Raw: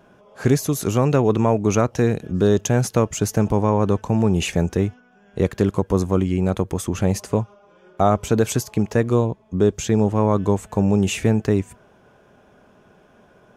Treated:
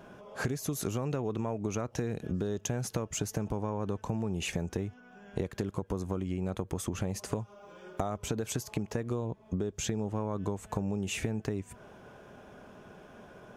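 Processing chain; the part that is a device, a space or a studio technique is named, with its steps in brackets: 7.32–8.18 s: treble shelf 5.1 kHz +7.5 dB; serial compression, leveller first (compression 3:1, threshold -19 dBFS, peak gain reduction 6.5 dB; compression 6:1, threshold -32 dBFS, peak gain reduction 14.5 dB); trim +1.5 dB

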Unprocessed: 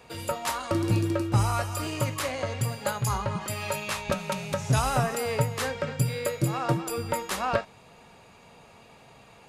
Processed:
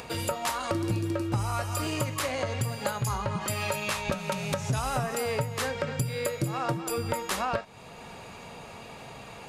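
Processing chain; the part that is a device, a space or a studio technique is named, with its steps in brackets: upward and downward compression (upward compressor, threshold -45 dBFS; compression 4:1, threshold -34 dBFS, peak gain reduction 14 dB); trim +6.5 dB

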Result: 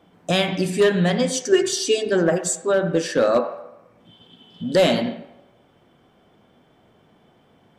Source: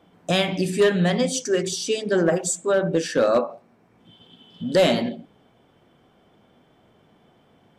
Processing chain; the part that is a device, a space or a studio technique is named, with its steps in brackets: filtered reverb send (on a send: high-pass 540 Hz 12 dB/octave + low-pass 3 kHz 12 dB/octave + reverberation RT60 0.90 s, pre-delay 71 ms, DRR 12 dB); 1.52–2.10 s: on the sum: comb 2.8 ms, depth 97%; trim +1 dB

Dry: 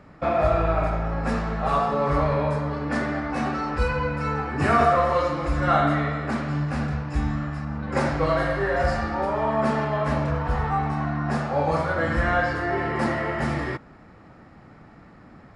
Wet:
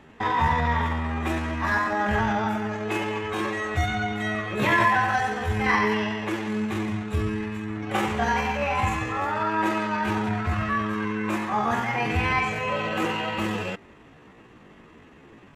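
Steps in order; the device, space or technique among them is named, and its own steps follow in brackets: chipmunk voice (pitch shift +6.5 st); trim -1.5 dB

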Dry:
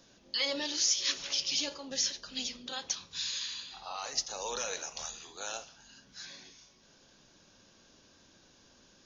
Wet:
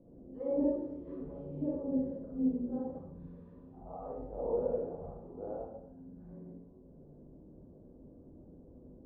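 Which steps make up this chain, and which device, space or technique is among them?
next room (low-pass 510 Hz 24 dB/octave; reverberation RT60 0.70 s, pre-delay 34 ms, DRR -6 dB); trim +5 dB

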